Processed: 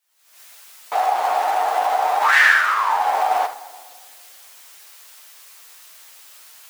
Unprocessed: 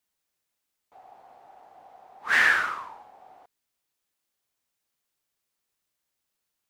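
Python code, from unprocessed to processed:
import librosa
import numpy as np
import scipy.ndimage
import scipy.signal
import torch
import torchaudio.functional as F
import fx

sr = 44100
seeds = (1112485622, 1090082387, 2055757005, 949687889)

p1 = fx.recorder_agc(x, sr, target_db=-15.5, rise_db_per_s=73.0, max_gain_db=30)
p2 = fx.quant_float(p1, sr, bits=2)
p3 = p1 + (p2 * 10.0 ** (-4.0 / 20.0))
p4 = scipy.signal.sosfilt(scipy.signal.butter(2, 750.0, 'highpass', fs=sr, output='sos'), p3)
p5 = fx.room_early_taps(p4, sr, ms=(11, 77), db=(-5.0, -10.5))
p6 = fx.room_shoebox(p5, sr, seeds[0], volume_m3=3300.0, walls='mixed', distance_m=0.49)
y = p6 * 10.0 ** (1.0 / 20.0)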